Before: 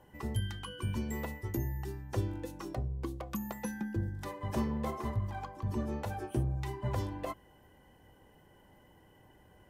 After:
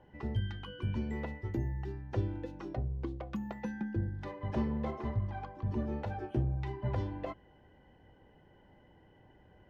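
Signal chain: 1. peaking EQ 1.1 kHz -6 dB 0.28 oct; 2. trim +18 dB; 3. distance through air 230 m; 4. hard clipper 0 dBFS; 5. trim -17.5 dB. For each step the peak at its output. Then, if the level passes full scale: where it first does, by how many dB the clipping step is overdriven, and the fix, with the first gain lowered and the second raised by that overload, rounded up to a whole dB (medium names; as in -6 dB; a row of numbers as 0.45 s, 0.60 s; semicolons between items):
-21.0 dBFS, -3.0 dBFS, -3.5 dBFS, -3.5 dBFS, -21.0 dBFS; nothing clips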